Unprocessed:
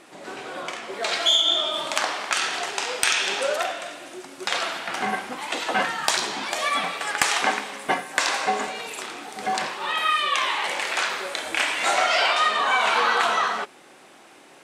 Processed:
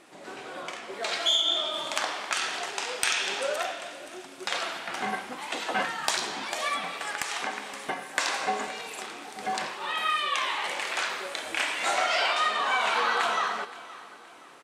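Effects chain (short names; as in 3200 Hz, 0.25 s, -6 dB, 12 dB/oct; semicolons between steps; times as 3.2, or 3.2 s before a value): feedback echo 0.521 s, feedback 41%, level -18 dB; 6.74–8.02 compressor 6:1, threshold -23 dBFS, peak gain reduction 8.5 dB; gain -5 dB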